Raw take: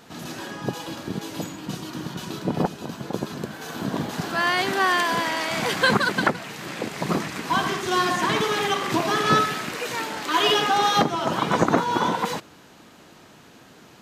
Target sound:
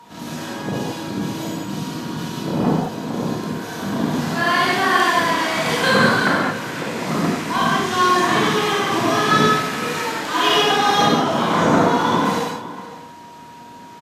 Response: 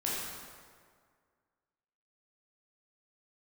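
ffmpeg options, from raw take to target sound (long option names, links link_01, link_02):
-filter_complex "[0:a]aeval=exprs='val(0)+0.01*sin(2*PI*950*n/s)':channel_layout=same,asplit=2[link_01][link_02];[link_02]adelay=507.3,volume=-14dB,highshelf=frequency=4000:gain=-11.4[link_03];[link_01][link_03]amix=inputs=2:normalize=0[link_04];[1:a]atrim=start_sample=2205,atrim=end_sample=6615,asetrate=28665,aresample=44100[link_05];[link_04][link_05]afir=irnorm=-1:irlink=0,volume=-3dB"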